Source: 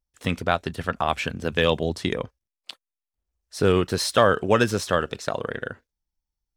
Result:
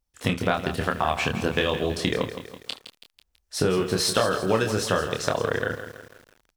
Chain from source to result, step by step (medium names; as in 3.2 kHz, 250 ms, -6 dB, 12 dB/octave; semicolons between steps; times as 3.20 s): compression 6:1, threshold -25 dBFS, peak gain reduction 12.5 dB; early reflections 27 ms -4.5 dB, 74 ms -17.5 dB; bit-crushed delay 164 ms, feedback 55%, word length 8-bit, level -10.5 dB; trim +4.5 dB